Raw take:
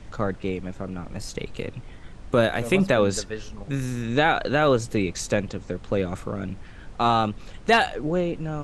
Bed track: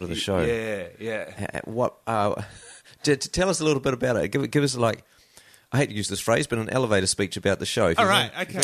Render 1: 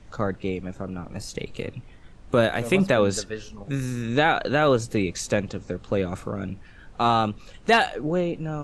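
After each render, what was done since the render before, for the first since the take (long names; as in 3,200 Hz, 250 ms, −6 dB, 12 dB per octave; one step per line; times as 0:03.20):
noise reduction from a noise print 6 dB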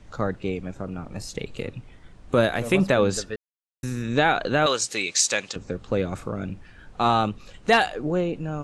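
0:03.36–0:03.83: silence
0:04.66–0:05.56: meter weighting curve ITU-R 468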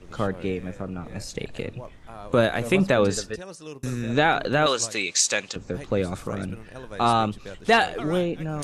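mix in bed track −17.5 dB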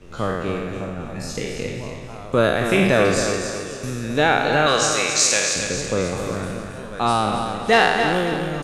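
peak hold with a decay on every bin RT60 1.16 s
repeating echo 271 ms, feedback 43%, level −7.5 dB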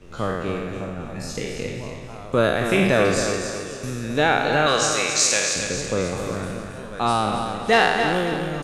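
level −1.5 dB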